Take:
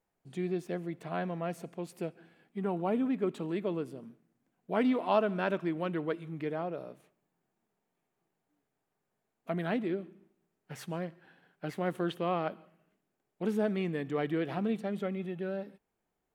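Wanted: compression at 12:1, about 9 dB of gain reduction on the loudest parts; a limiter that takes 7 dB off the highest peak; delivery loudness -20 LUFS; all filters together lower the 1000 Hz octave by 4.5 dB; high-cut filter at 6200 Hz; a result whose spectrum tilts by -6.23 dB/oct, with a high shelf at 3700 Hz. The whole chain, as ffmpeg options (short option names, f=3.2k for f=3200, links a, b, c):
-af "lowpass=6.2k,equalizer=f=1k:t=o:g=-7,highshelf=f=3.7k:g=6.5,acompressor=threshold=-33dB:ratio=12,volume=21dB,alimiter=limit=-8.5dB:level=0:latency=1"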